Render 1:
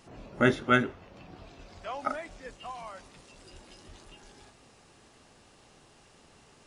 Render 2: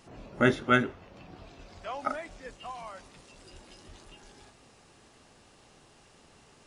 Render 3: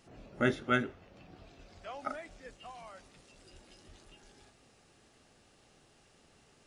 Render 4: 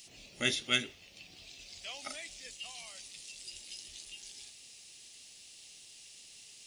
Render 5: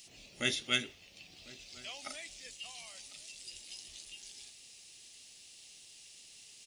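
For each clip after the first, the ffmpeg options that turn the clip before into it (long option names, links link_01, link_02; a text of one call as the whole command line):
ffmpeg -i in.wav -af anull out.wav
ffmpeg -i in.wav -af "equalizer=frequency=1000:width_type=o:width=0.35:gain=-5.5,volume=-5.5dB" out.wav
ffmpeg -i in.wav -af "aexciter=amount=7.2:drive=8.8:freq=2200,volume=-8dB" out.wav
ffmpeg -i in.wav -filter_complex "[0:a]asplit=2[link_01][link_02];[link_02]adelay=1050,volume=-19dB,highshelf=frequency=4000:gain=-23.6[link_03];[link_01][link_03]amix=inputs=2:normalize=0,volume=-1.5dB" out.wav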